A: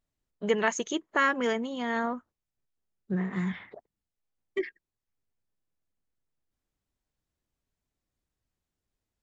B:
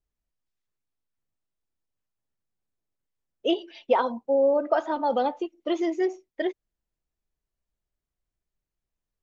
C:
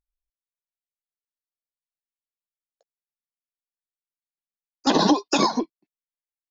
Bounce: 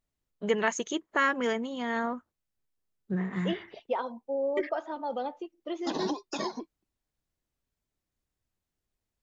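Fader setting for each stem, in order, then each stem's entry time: -1.0 dB, -9.0 dB, -14.5 dB; 0.00 s, 0.00 s, 1.00 s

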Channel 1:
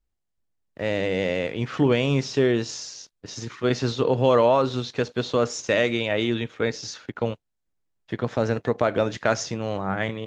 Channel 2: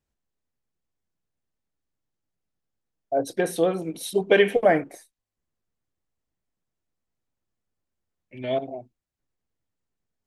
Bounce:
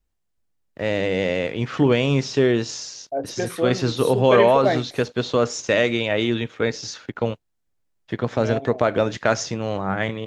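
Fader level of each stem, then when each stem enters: +2.5 dB, -2.5 dB; 0.00 s, 0.00 s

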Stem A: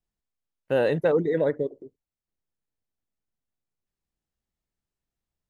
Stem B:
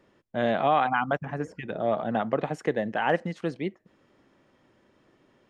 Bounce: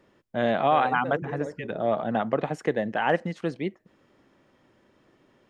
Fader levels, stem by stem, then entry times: -12.5 dB, +1.0 dB; 0.00 s, 0.00 s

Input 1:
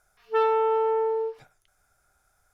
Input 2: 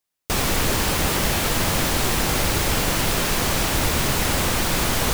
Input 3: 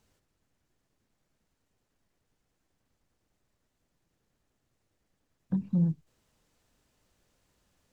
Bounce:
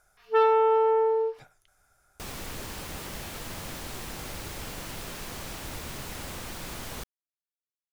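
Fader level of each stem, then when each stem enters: +1.5 dB, -17.0 dB, mute; 0.00 s, 1.90 s, mute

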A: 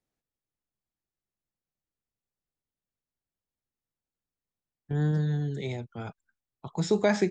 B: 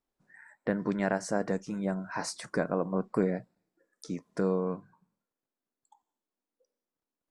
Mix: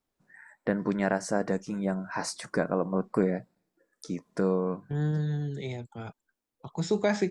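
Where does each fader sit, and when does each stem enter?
-2.0 dB, +2.0 dB; 0.00 s, 0.00 s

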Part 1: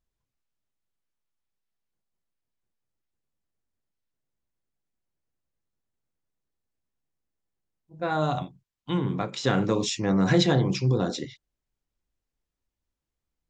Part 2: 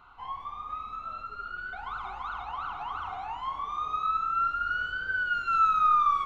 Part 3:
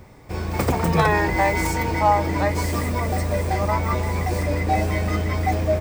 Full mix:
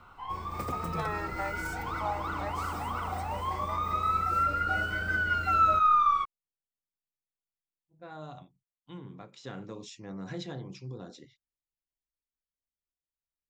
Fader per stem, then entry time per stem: -18.0 dB, 0.0 dB, -16.0 dB; 0.00 s, 0.00 s, 0.00 s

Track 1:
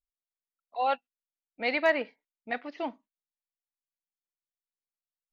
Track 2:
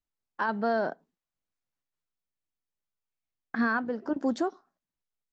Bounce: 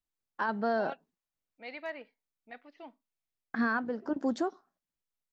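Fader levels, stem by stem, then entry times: -15.0 dB, -2.5 dB; 0.00 s, 0.00 s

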